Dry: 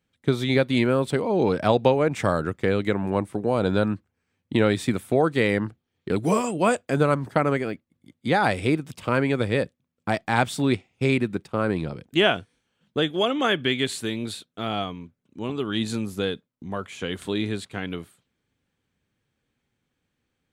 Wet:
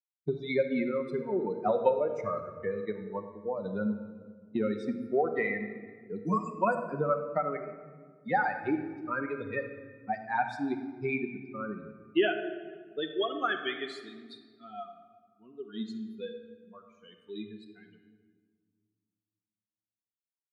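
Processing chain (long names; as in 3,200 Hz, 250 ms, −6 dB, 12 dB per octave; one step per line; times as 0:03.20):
spectral dynamics exaggerated over time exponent 3
downward compressor 2 to 1, threshold −31 dBFS, peak gain reduction 7.5 dB
band-pass filter 250–2,200 Hz
convolution reverb RT60 1.6 s, pre-delay 5 ms, DRR 5 dB
level +4.5 dB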